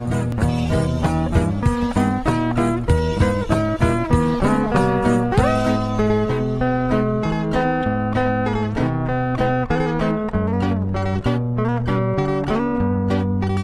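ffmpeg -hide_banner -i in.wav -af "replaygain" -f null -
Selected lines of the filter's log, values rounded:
track_gain = +2.3 dB
track_peak = 0.439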